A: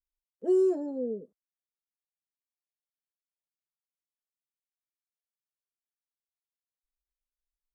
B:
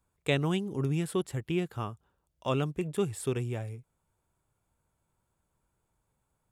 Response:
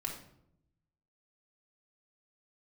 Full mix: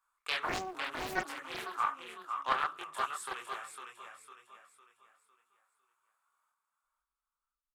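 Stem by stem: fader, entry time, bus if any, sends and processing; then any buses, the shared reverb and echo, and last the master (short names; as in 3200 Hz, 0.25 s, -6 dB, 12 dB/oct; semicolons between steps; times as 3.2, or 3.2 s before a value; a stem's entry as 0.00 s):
-6.0 dB, 0.00 s, no send, echo send -10.5 dB, auto duck -11 dB, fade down 0.75 s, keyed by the second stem
-2.0 dB, 0.00 s, send -11 dB, echo send -4.5 dB, resonant high-pass 1200 Hz, resonance Q 5.6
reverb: on, RT60 0.75 s, pre-delay 3 ms
echo: feedback echo 0.504 s, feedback 39%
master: chorus voices 4, 1.4 Hz, delay 24 ms, depth 3 ms; Doppler distortion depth 0.82 ms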